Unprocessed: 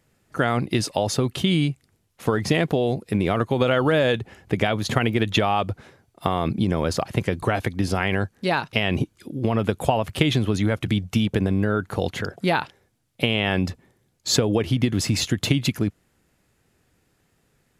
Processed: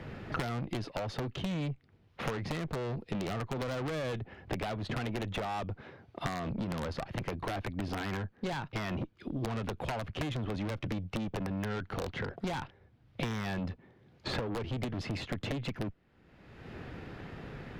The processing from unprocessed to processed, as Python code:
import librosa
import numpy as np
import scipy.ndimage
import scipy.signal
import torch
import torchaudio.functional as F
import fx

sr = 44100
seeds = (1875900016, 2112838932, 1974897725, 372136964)

y = (np.mod(10.0 ** (10.5 / 20.0) * x + 1.0, 2.0) - 1.0) / 10.0 ** (10.5 / 20.0)
y = fx.air_absorb(y, sr, metres=320.0)
y = fx.tube_stage(y, sr, drive_db=27.0, bias=0.5)
y = fx.band_squash(y, sr, depth_pct=100)
y = F.gain(torch.from_numpy(y), -5.0).numpy()